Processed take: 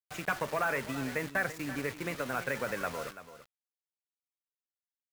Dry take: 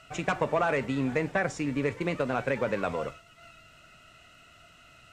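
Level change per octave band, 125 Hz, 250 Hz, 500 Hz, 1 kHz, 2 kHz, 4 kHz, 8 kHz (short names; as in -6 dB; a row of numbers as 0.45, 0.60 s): -8.0, -7.5, -7.0, -4.5, -0.5, -1.5, +1.0 dB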